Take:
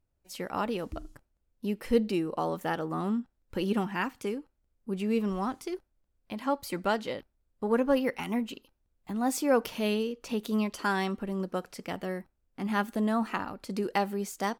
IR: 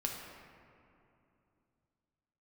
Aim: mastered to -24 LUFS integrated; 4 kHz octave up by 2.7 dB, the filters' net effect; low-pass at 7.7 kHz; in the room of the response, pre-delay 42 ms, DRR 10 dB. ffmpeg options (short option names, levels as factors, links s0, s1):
-filter_complex "[0:a]lowpass=7700,equalizer=f=4000:t=o:g=4,asplit=2[s0][s1];[1:a]atrim=start_sample=2205,adelay=42[s2];[s1][s2]afir=irnorm=-1:irlink=0,volume=0.251[s3];[s0][s3]amix=inputs=2:normalize=0,volume=2.11"